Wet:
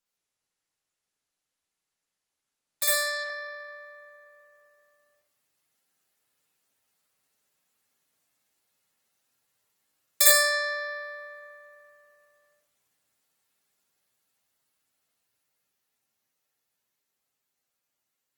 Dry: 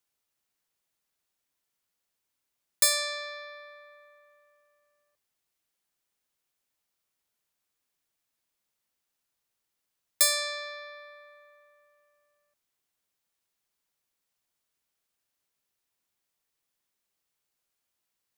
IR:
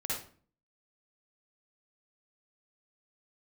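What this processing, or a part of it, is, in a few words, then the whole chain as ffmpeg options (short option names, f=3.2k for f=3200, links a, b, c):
far-field microphone of a smart speaker: -filter_complex "[0:a]asettb=1/sr,asplit=3[a][b][c];[a]atrim=end=11.134[d];[b]atrim=start=11.13:end=11.53,asetpts=PTS-STARTPTS,afade=t=in:d=0.004:c=qsin,afade=t=out:st=0.396:d=0.004:c=qsin,highpass=42[e];[c]atrim=start=11.526[f];[d][e]acrossfade=d=0.004:c1=hsin:c2=qsin[g];[g][f]acrossfade=d=0.004:c1=qsin:c2=hsin[h];[1:a]atrim=start_sample=2205[i];[h][i]afir=irnorm=-1:irlink=0,highpass=94,dynaudnorm=f=680:g=13:m=11.5dB,volume=-3dB" -ar 48000 -c:a libopus -b:a 16k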